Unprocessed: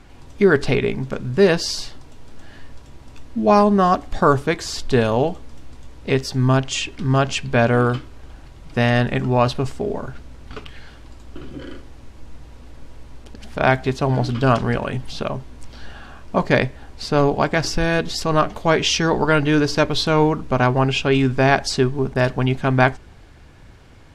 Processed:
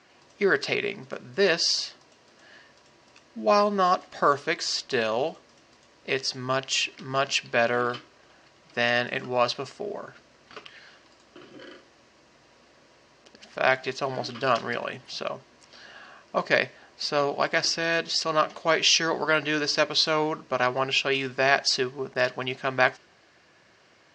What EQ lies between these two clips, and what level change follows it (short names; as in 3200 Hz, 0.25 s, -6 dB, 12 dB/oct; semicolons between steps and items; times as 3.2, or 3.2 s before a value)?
dynamic EQ 3800 Hz, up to +4 dB, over -34 dBFS, Q 0.78; speaker cabinet 260–6200 Hz, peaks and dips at 270 Hz -8 dB, 450 Hz -5 dB, 860 Hz -9 dB, 1400 Hz -5 dB, 2300 Hz -4 dB, 3500 Hz -7 dB; low shelf 420 Hz -8.5 dB; 0.0 dB